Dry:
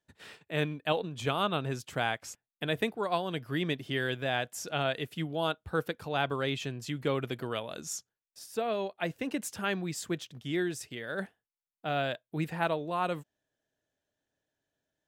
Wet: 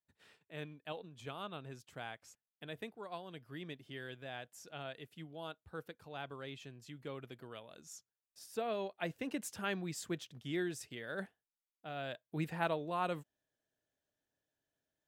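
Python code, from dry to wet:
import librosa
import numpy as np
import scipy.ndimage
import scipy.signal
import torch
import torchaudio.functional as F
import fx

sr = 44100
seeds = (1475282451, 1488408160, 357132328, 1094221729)

y = fx.gain(x, sr, db=fx.line((7.89, -15.0), (8.47, -6.0), (11.16, -6.0), (11.94, -13.0), (12.29, -5.0)))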